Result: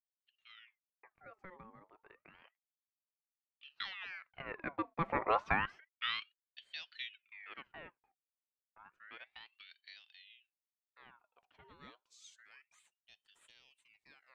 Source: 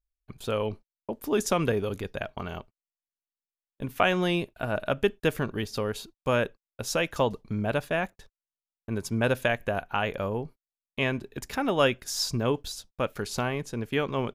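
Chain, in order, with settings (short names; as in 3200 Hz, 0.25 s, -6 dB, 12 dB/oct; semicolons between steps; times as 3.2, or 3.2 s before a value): Doppler pass-by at 5.37, 17 m/s, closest 1.7 m; low-pass sweep 1200 Hz -> 5900 Hz, 11.1–12.07; ring modulator with a swept carrier 1900 Hz, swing 65%, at 0.3 Hz; gain +4 dB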